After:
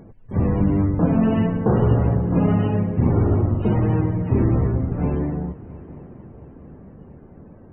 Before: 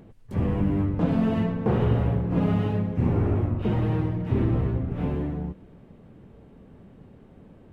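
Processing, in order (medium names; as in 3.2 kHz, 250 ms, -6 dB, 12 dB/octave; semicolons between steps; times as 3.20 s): loudest bins only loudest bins 64; multi-head delay 226 ms, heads first and third, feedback 66%, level -21.5 dB; trim +5 dB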